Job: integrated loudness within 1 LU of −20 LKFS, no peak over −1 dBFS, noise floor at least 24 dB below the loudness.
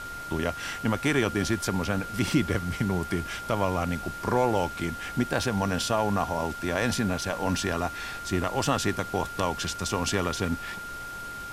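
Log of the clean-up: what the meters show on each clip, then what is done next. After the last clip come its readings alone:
interfering tone 1,400 Hz; level of the tone −36 dBFS; background noise floor −38 dBFS; target noise floor −52 dBFS; integrated loudness −28.0 LKFS; sample peak −11.0 dBFS; target loudness −20.0 LKFS
→ notch filter 1,400 Hz, Q 30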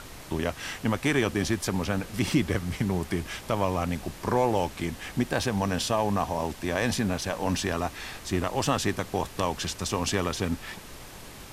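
interfering tone none found; background noise floor −44 dBFS; target noise floor −53 dBFS
→ noise reduction from a noise print 9 dB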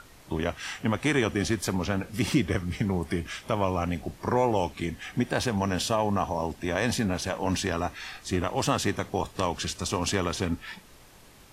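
background noise floor −52 dBFS; target noise floor −53 dBFS
→ noise reduction from a noise print 6 dB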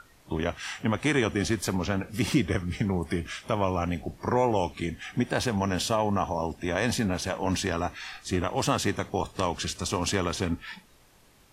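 background noise floor −58 dBFS; integrated loudness −28.5 LKFS; sample peak −11.5 dBFS; target loudness −20.0 LKFS
→ level +8.5 dB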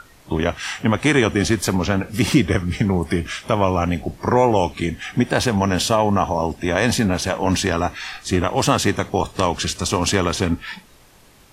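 integrated loudness −20.0 LKFS; sample peak −3.0 dBFS; background noise floor −50 dBFS

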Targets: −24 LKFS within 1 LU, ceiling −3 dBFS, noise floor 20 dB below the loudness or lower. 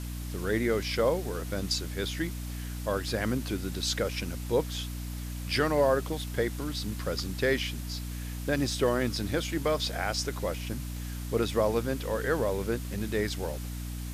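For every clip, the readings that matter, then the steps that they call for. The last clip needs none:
mains hum 60 Hz; hum harmonics up to 300 Hz; level of the hum −34 dBFS; background noise floor −37 dBFS; target noise floor −51 dBFS; integrated loudness −30.5 LKFS; sample peak −13.0 dBFS; target loudness −24.0 LKFS
→ hum removal 60 Hz, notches 5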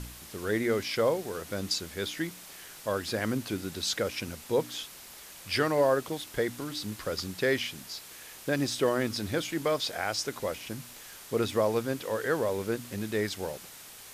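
mains hum none found; background noise floor −48 dBFS; target noise floor −51 dBFS
→ broadband denoise 6 dB, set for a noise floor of −48 dBFS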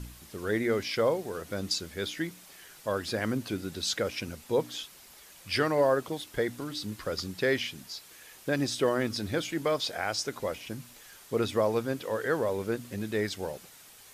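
background noise floor −53 dBFS; integrated loudness −31.0 LKFS; sample peak −13.5 dBFS; target loudness −24.0 LKFS
→ level +7 dB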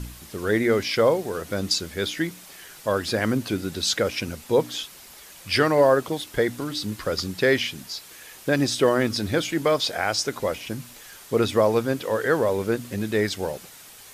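integrated loudness −24.0 LKFS; sample peak −6.5 dBFS; background noise floor −46 dBFS

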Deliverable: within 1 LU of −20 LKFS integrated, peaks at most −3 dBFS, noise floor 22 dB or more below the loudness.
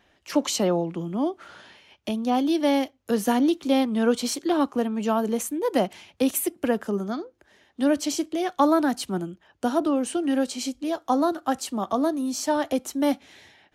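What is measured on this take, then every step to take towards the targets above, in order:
integrated loudness −25.0 LKFS; sample peak −8.5 dBFS; target loudness −20.0 LKFS
→ level +5 dB

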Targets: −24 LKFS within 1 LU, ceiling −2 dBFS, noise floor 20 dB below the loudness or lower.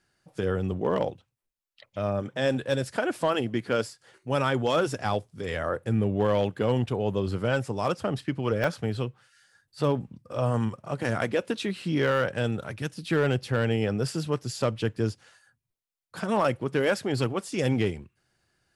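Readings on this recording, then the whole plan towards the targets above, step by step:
share of clipped samples 0.2%; peaks flattened at −16.0 dBFS; number of dropouts 1; longest dropout 3.2 ms; integrated loudness −28.0 LKFS; sample peak −16.0 dBFS; target loudness −24.0 LKFS
→ clipped peaks rebuilt −16 dBFS
repair the gap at 0:08.64, 3.2 ms
level +4 dB

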